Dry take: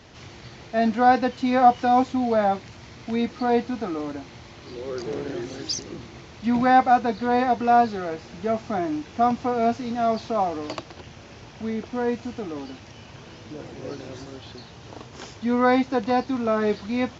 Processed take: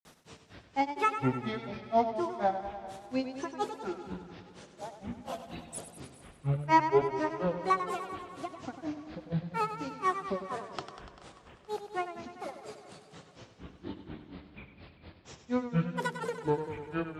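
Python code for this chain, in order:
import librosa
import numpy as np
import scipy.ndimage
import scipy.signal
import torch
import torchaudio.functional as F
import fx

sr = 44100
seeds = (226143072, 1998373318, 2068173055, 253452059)

p1 = fx.hum_notches(x, sr, base_hz=50, count=6)
p2 = fx.granulator(p1, sr, seeds[0], grain_ms=163.0, per_s=4.2, spray_ms=33.0, spread_st=12)
p3 = p2 + fx.echo_feedback(p2, sr, ms=431, feedback_pct=45, wet_db=-21.0, dry=0)
p4 = fx.echo_warbled(p3, sr, ms=98, feedback_pct=71, rate_hz=2.8, cents=77, wet_db=-10.0)
y = F.gain(torch.from_numpy(p4), -4.5).numpy()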